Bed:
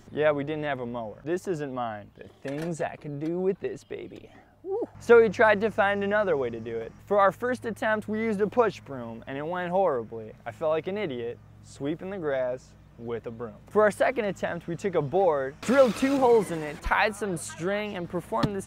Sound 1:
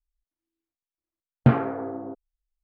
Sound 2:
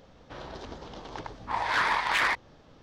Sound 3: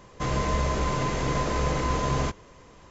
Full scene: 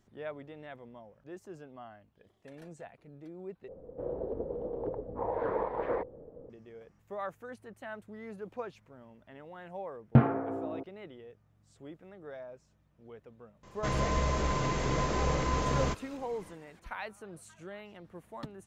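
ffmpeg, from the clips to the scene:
-filter_complex "[0:a]volume=-17dB[a];[2:a]lowpass=f=490:t=q:w=5.4[b];[1:a]highshelf=f=2.6k:g=-10[c];[a]asplit=2[d][e];[d]atrim=end=3.684[f];[b]atrim=end=2.82,asetpts=PTS-STARTPTS,volume=-0.5dB[g];[e]atrim=start=6.496[h];[c]atrim=end=2.63,asetpts=PTS-STARTPTS,volume=-3.5dB,afade=t=in:d=0.004:c=hsin,afade=t=out:st=2.626:d=0.004:c=hsin,adelay=8690[i];[3:a]atrim=end=2.9,asetpts=PTS-STARTPTS,volume=-4dB,afade=t=in:d=0.004:c=hsin,afade=t=out:st=2.896:d=0.004:c=hsin,adelay=13630[j];[f][g]acrossfade=d=0.004:c1=hsin:c2=hsin[k];[k][h]acrossfade=d=0.004:c1=hsin:c2=hsin[l];[l][i][j]amix=inputs=3:normalize=0"

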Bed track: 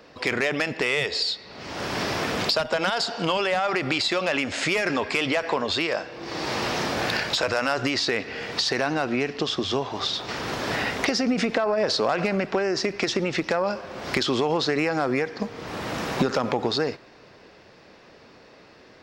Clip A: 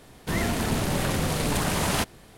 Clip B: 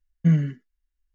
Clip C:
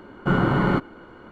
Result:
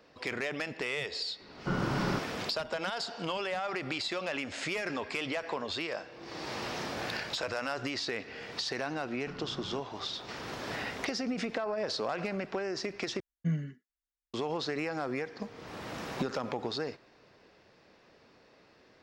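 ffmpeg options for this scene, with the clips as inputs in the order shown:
-filter_complex "[3:a]asplit=2[a][b];[0:a]volume=-10.5dB[c];[b]acompressor=threshold=-25dB:ratio=6:attack=3.2:release=140:knee=1:detection=peak[d];[2:a]highpass=f=170:p=1[e];[c]asplit=2[f][g];[f]atrim=end=13.204[h];[e]atrim=end=1.14,asetpts=PTS-STARTPTS,volume=-9.5dB[i];[g]atrim=start=14.336[j];[a]atrim=end=1.31,asetpts=PTS-STARTPTS,volume=-11.5dB,afade=t=in:d=0.004:c=hsin,afade=t=out:st=1.306:d=0.004:c=hsin,adelay=1400[k];[d]atrim=end=1.31,asetpts=PTS-STARTPTS,volume=-17dB,afade=t=in:d=0.004:c=hsin,afade=t=out:st=1.306:d=0.004:c=hsin,adelay=9010[l];[h][i]acrossfade=d=0.004:c1=hsin:c2=hsin[m];[m][j]acrossfade=d=0.004:c1=hsin:c2=hsin[n];[n][k][l]amix=inputs=3:normalize=0"

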